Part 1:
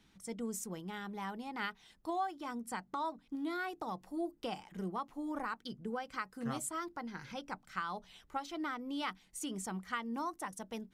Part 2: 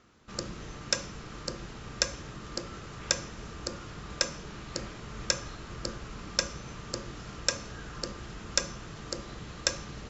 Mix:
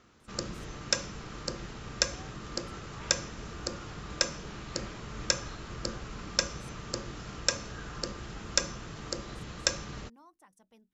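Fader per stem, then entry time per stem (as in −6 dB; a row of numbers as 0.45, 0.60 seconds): −19.0, +0.5 decibels; 0.00, 0.00 seconds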